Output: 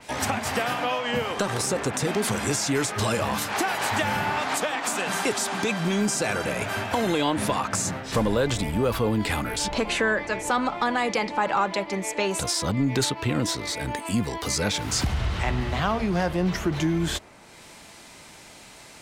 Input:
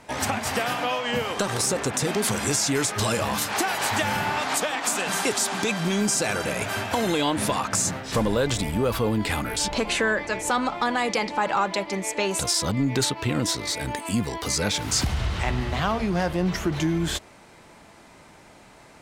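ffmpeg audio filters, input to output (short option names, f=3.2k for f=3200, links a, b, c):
-filter_complex "[0:a]acrossover=split=450|2500[a][b][c];[c]acompressor=mode=upward:threshold=-39dB:ratio=2.5[d];[a][b][d]amix=inputs=3:normalize=0,adynamicequalizer=threshold=0.0126:dfrequency=3400:dqfactor=0.7:tfrequency=3400:tqfactor=0.7:attack=5:release=100:ratio=0.375:range=2:mode=cutabove:tftype=highshelf"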